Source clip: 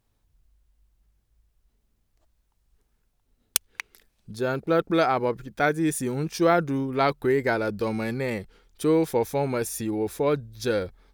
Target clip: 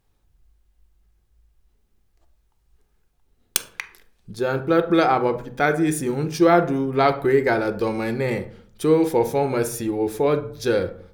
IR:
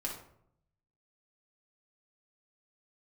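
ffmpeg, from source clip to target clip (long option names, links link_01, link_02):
-filter_complex "[0:a]asplit=2[link_01][link_02];[1:a]atrim=start_sample=2205,asetrate=57330,aresample=44100,highshelf=frequency=5200:gain=-9.5[link_03];[link_02][link_03]afir=irnorm=-1:irlink=0,volume=-1dB[link_04];[link_01][link_04]amix=inputs=2:normalize=0"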